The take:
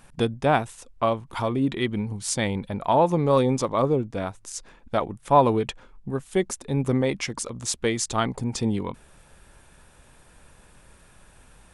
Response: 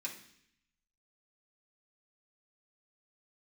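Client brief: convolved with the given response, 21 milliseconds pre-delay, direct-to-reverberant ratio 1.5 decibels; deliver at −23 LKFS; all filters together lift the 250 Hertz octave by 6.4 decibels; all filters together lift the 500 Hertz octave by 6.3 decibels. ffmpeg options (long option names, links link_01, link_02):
-filter_complex "[0:a]equalizer=frequency=250:width_type=o:gain=6,equalizer=frequency=500:width_type=o:gain=6,asplit=2[link_01][link_02];[1:a]atrim=start_sample=2205,adelay=21[link_03];[link_02][link_03]afir=irnorm=-1:irlink=0,volume=-1.5dB[link_04];[link_01][link_04]amix=inputs=2:normalize=0,volume=-4.5dB"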